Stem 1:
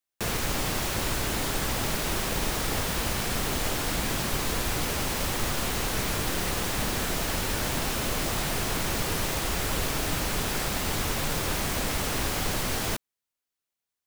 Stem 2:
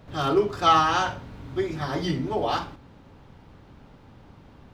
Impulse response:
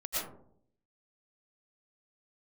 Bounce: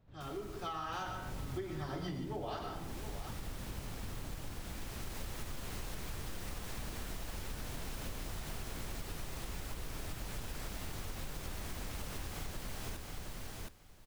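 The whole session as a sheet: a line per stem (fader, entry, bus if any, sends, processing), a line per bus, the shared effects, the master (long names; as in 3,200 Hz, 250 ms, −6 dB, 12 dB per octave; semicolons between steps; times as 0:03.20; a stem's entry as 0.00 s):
−13.5 dB, 0.00 s, no send, echo send −6 dB, automatic ducking −13 dB, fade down 0.25 s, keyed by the second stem
0:00.74 −23.5 dB → 0:01.03 −11.5 dB, 0.00 s, send −8.5 dB, echo send −19.5 dB, automatic gain control gain up to 8 dB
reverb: on, RT60 0.65 s, pre-delay 75 ms
echo: repeating echo 719 ms, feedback 16%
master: low-shelf EQ 120 Hz +9.5 dB; downward compressor 10 to 1, threshold −37 dBFS, peak gain reduction 16 dB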